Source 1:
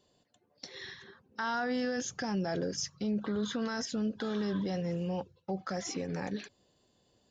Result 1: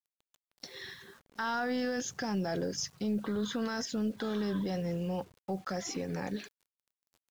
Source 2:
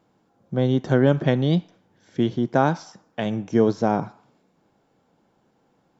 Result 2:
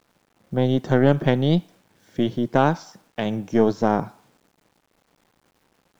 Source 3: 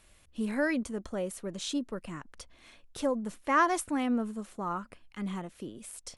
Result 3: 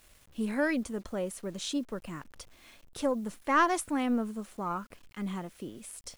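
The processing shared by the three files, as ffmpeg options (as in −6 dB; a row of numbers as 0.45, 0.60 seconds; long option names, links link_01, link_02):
-af "acrusher=bits=9:mix=0:aa=0.000001,aeval=exprs='0.596*(cos(1*acos(clip(val(0)/0.596,-1,1)))-cos(1*PI/2))+0.0596*(cos(4*acos(clip(val(0)/0.596,-1,1)))-cos(4*PI/2))':channel_layout=same"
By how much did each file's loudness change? 0.0, +0.5, 0.0 LU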